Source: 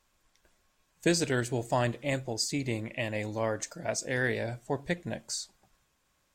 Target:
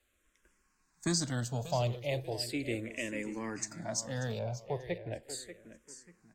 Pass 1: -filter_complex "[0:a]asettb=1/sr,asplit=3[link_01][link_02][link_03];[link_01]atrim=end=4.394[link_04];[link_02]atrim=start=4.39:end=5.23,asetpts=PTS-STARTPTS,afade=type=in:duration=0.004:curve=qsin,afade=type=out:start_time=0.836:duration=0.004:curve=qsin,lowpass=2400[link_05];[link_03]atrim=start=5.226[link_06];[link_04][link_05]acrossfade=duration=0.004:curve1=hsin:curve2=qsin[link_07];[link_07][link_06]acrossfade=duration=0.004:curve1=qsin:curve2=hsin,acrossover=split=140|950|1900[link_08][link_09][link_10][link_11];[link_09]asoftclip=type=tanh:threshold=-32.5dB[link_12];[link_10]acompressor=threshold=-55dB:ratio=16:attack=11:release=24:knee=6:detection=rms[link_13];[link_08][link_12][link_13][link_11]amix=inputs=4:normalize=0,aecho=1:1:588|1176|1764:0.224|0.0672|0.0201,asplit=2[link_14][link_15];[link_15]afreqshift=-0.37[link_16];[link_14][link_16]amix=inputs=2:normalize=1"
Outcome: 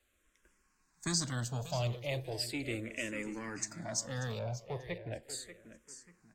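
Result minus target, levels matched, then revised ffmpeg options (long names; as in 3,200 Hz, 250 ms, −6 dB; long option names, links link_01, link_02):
soft clipping: distortion +11 dB
-filter_complex "[0:a]asettb=1/sr,asplit=3[link_01][link_02][link_03];[link_01]atrim=end=4.394[link_04];[link_02]atrim=start=4.39:end=5.23,asetpts=PTS-STARTPTS,afade=type=in:duration=0.004:curve=qsin,afade=type=out:start_time=0.836:duration=0.004:curve=qsin,lowpass=2400[link_05];[link_03]atrim=start=5.226[link_06];[link_04][link_05]acrossfade=duration=0.004:curve1=hsin:curve2=qsin[link_07];[link_07][link_06]acrossfade=duration=0.004:curve1=qsin:curve2=hsin,acrossover=split=140|950|1900[link_08][link_09][link_10][link_11];[link_09]asoftclip=type=tanh:threshold=-21.5dB[link_12];[link_10]acompressor=threshold=-55dB:ratio=16:attack=11:release=24:knee=6:detection=rms[link_13];[link_08][link_12][link_13][link_11]amix=inputs=4:normalize=0,aecho=1:1:588|1176|1764:0.224|0.0672|0.0201,asplit=2[link_14][link_15];[link_15]afreqshift=-0.37[link_16];[link_14][link_16]amix=inputs=2:normalize=1"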